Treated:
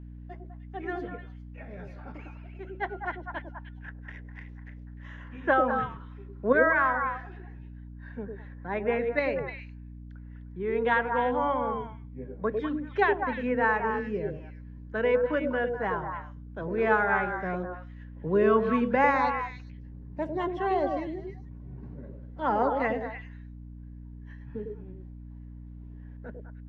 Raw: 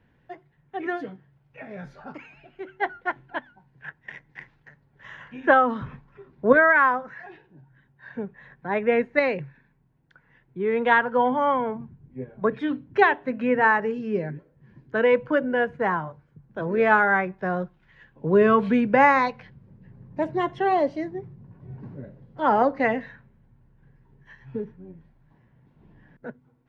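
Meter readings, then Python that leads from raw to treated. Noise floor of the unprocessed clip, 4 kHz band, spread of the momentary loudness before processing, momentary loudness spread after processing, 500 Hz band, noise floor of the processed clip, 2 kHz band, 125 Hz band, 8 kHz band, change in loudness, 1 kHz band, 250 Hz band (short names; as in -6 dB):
-64 dBFS, -5.5 dB, 22 LU, 22 LU, -4.0 dB, -44 dBFS, -6.0 dB, -1.0 dB, n/a, -5.5 dB, -5.0 dB, -5.0 dB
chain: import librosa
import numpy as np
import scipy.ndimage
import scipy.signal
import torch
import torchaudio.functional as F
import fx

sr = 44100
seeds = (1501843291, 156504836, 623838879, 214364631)

y = fx.echo_stepped(x, sr, ms=101, hz=400.0, octaves=1.4, feedback_pct=70, wet_db=-0.5)
y = fx.add_hum(y, sr, base_hz=60, snr_db=13)
y = y * 10.0 ** (-6.5 / 20.0)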